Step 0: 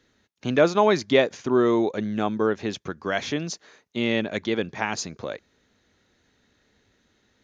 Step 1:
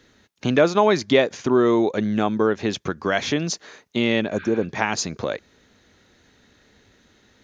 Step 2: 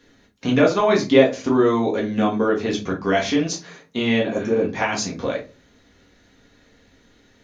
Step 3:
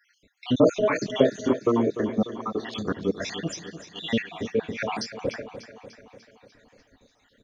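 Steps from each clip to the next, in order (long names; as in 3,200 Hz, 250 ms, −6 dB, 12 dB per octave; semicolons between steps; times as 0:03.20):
healed spectral selection 0:04.35–0:04.61, 1,200–5,200 Hz before; downward compressor 1.5 to 1, threshold −33 dBFS, peak gain reduction 7.5 dB; level +8.5 dB
rectangular room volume 120 cubic metres, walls furnished, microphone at 1.8 metres; level −3.5 dB
time-frequency cells dropped at random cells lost 68%; on a send: repeating echo 296 ms, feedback 59%, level −12.5 dB; on the sum: level −1.5 dB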